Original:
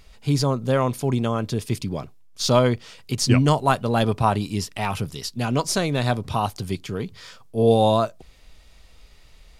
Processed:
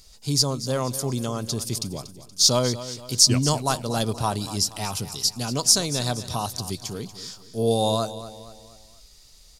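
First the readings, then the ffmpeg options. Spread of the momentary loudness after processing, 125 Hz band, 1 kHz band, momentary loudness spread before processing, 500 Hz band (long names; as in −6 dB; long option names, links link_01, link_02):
16 LU, −4.5 dB, −5.5 dB, 13 LU, −5.0 dB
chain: -filter_complex "[0:a]highshelf=frequency=3600:width_type=q:width=1.5:gain=12.5,asplit=2[link_01][link_02];[link_02]aecho=0:1:237|474|711|948:0.2|0.0898|0.0404|0.0182[link_03];[link_01][link_03]amix=inputs=2:normalize=0,volume=-5dB"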